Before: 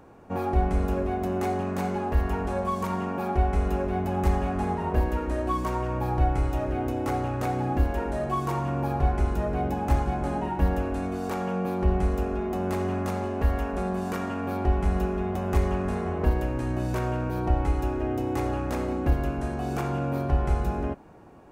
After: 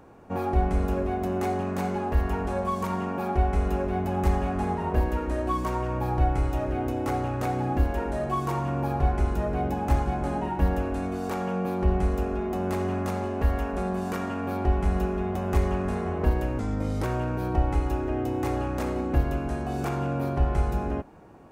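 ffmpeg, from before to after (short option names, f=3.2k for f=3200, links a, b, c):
-filter_complex "[0:a]asplit=3[a][b][c];[a]atrim=end=16.594[d];[b]atrim=start=16.59:end=16.96,asetpts=PTS-STARTPTS,asetrate=36603,aresample=44100,atrim=end_sample=19659,asetpts=PTS-STARTPTS[e];[c]atrim=start=16.956[f];[d][e]acrossfade=d=0.004:c1=hsin:c2=hsin[g];[g][f]acrossfade=d=0.004:c1=hsin:c2=hsin"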